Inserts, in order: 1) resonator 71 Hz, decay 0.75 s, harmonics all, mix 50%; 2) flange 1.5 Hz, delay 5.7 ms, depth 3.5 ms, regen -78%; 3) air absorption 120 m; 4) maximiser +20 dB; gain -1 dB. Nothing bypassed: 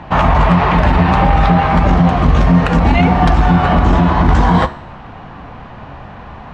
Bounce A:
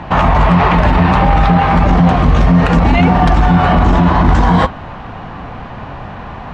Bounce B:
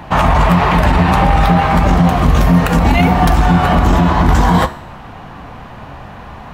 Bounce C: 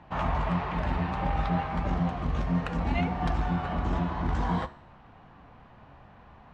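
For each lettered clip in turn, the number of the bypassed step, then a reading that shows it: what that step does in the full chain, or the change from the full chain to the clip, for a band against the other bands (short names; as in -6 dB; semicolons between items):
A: 1, momentary loudness spread change +17 LU; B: 3, 4 kHz band +2.5 dB; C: 4, crest factor change +4.0 dB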